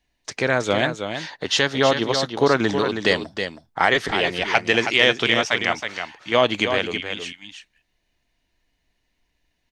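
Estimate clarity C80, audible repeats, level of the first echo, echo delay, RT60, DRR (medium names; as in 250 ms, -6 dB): no reverb, 1, -7.5 dB, 320 ms, no reverb, no reverb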